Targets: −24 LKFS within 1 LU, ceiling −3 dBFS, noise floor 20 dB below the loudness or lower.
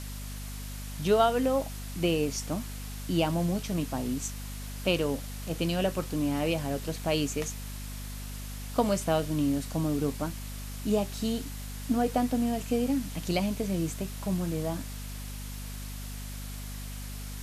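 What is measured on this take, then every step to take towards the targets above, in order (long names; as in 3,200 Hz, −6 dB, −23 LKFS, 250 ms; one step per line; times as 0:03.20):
mains hum 50 Hz; hum harmonics up to 250 Hz; level of the hum −37 dBFS; background noise floor −39 dBFS; target noise floor −51 dBFS; integrated loudness −31.0 LKFS; sample peak −10.5 dBFS; target loudness −24.0 LKFS
→ mains-hum notches 50/100/150/200/250 Hz
noise reduction from a noise print 12 dB
level +7 dB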